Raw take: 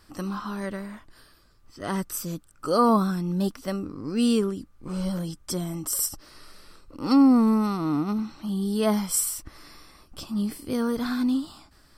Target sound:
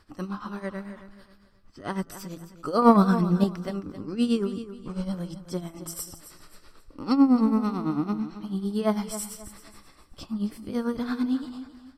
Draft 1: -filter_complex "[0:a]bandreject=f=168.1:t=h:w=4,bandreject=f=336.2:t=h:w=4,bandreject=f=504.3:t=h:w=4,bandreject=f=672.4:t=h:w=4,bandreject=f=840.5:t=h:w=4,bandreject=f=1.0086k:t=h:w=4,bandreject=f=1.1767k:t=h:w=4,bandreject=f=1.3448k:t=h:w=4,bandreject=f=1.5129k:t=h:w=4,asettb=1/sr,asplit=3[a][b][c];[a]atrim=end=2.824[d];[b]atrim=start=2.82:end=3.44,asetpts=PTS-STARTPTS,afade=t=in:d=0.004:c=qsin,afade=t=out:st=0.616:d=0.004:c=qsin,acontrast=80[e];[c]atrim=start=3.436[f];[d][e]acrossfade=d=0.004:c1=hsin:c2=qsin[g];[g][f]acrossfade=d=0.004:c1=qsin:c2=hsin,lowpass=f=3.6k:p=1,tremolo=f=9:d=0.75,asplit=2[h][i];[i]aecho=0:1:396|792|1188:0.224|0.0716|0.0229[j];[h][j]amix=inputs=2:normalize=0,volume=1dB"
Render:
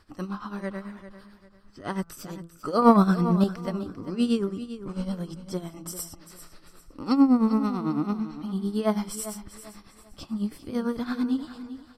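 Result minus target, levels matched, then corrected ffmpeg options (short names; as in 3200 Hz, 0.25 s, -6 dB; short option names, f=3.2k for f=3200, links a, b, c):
echo 0.129 s late
-filter_complex "[0:a]bandreject=f=168.1:t=h:w=4,bandreject=f=336.2:t=h:w=4,bandreject=f=504.3:t=h:w=4,bandreject=f=672.4:t=h:w=4,bandreject=f=840.5:t=h:w=4,bandreject=f=1.0086k:t=h:w=4,bandreject=f=1.1767k:t=h:w=4,bandreject=f=1.3448k:t=h:w=4,bandreject=f=1.5129k:t=h:w=4,asettb=1/sr,asplit=3[a][b][c];[a]atrim=end=2.824[d];[b]atrim=start=2.82:end=3.44,asetpts=PTS-STARTPTS,afade=t=in:d=0.004:c=qsin,afade=t=out:st=0.616:d=0.004:c=qsin,acontrast=80[e];[c]atrim=start=3.436[f];[d][e]acrossfade=d=0.004:c1=hsin:c2=qsin[g];[g][f]acrossfade=d=0.004:c1=qsin:c2=hsin,lowpass=f=3.6k:p=1,tremolo=f=9:d=0.75,asplit=2[h][i];[i]aecho=0:1:267|534|801:0.224|0.0716|0.0229[j];[h][j]amix=inputs=2:normalize=0,volume=1dB"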